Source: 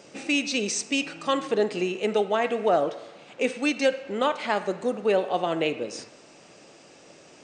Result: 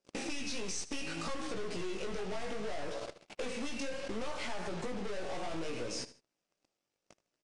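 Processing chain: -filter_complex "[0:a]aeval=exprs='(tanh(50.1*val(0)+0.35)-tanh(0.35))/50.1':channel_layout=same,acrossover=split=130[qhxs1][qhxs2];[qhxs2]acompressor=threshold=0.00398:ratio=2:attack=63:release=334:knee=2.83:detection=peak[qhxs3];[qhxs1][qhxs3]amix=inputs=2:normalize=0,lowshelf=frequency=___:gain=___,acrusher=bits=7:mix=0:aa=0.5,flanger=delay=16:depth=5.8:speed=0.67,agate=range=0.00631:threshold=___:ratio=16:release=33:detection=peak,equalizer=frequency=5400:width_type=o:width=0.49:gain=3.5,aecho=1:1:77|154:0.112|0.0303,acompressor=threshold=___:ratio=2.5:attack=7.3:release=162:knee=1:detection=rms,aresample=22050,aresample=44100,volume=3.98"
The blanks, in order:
290, 2, 0.00224, 0.00398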